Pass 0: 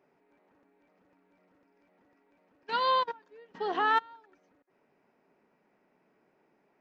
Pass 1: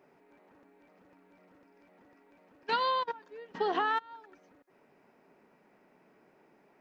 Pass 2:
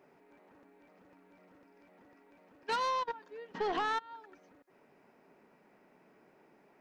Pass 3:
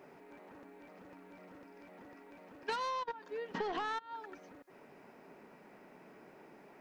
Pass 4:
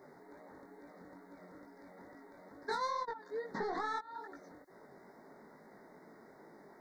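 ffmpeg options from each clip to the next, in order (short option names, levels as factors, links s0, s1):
-af "acompressor=threshold=0.0251:ratio=10,volume=2"
-af "asoftclip=type=tanh:threshold=0.0447"
-af "acompressor=threshold=0.00708:ratio=6,volume=2.24"
-af "flanger=delay=17.5:depth=5.9:speed=2.3,asuperstop=centerf=2800:order=12:qfactor=1.9,volume=1.41"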